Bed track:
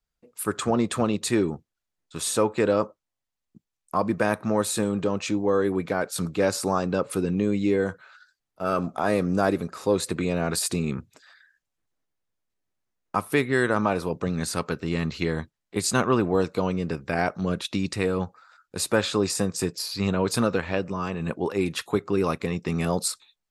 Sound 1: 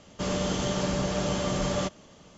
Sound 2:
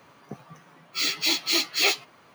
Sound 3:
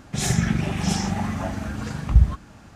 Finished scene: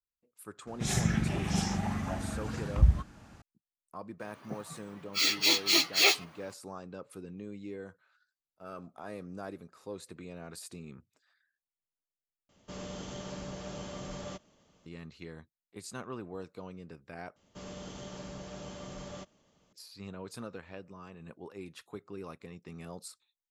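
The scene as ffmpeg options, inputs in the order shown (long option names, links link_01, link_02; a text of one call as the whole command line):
ffmpeg -i bed.wav -i cue0.wav -i cue1.wav -i cue2.wav -filter_complex "[1:a]asplit=2[link_01][link_02];[0:a]volume=-19.5dB[link_03];[3:a]aresample=32000,aresample=44100[link_04];[link_03]asplit=3[link_05][link_06][link_07];[link_05]atrim=end=12.494[link_08];[link_01]atrim=end=2.37,asetpts=PTS-STARTPTS,volume=-13.5dB[link_09];[link_06]atrim=start=14.856:end=17.364[link_10];[link_02]atrim=end=2.37,asetpts=PTS-STARTPTS,volume=-16dB[link_11];[link_07]atrim=start=19.726[link_12];[link_04]atrim=end=2.75,asetpts=PTS-STARTPTS,volume=-7dB,afade=type=in:duration=0.004:curve=hsin,afade=type=out:start_time=2.746:duration=0.004:curve=hsin,adelay=670[link_13];[2:a]atrim=end=2.34,asetpts=PTS-STARTPTS,volume=-1.5dB,afade=type=in:duration=0.004:curve=hsin,afade=type=out:start_time=2.336:duration=0.004:curve=hsin,adelay=4200[link_14];[link_08][link_09]acrossfade=duration=0.004:curve1=hsin:curve2=hsin[link_15];[link_15][link_10]acrossfade=duration=0.004:curve1=hsin:curve2=hsin[link_16];[link_16][link_11]acrossfade=duration=0.004:curve1=hsin:curve2=hsin[link_17];[link_17][link_12]acrossfade=duration=0.004:curve1=hsin:curve2=hsin[link_18];[link_18][link_13][link_14]amix=inputs=3:normalize=0" out.wav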